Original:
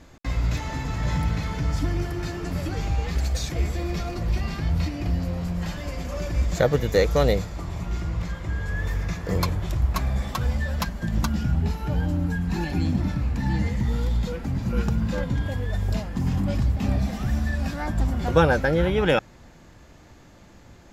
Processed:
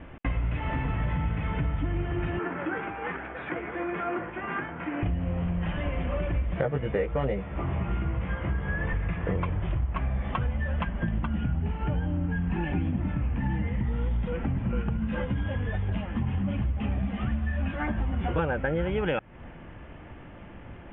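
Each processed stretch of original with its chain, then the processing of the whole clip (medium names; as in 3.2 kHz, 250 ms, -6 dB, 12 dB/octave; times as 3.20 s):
2.39–5.03 s: compression 3:1, threshold -27 dBFS + cabinet simulation 320–3100 Hz, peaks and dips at 340 Hz +4 dB, 600 Hz -3 dB, 950 Hz +4 dB, 1.5 kHz +9 dB, 2.8 kHz -6 dB + doubling 16 ms -11.5 dB
6.54–8.93 s: high-pass 74 Hz + distance through air 150 m + doubling 15 ms -2.5 dB
14.97–18.39 s: treble shelf 3.7 kHz +8.5 dB + three-phase chorus
whole clip: steep low-pass 3.2 kHz 96 dB/octave; compression 6:1, threshold -30 dBFS; trim +5 dB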